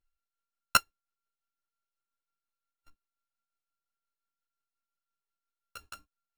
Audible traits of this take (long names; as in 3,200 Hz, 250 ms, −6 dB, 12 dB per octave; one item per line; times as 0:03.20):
a buzz of ramps at a fixed pitch in blocks of 32 samples
tremolo triangle 5.7 Hz, depth 50%
a shimmering, thickened sound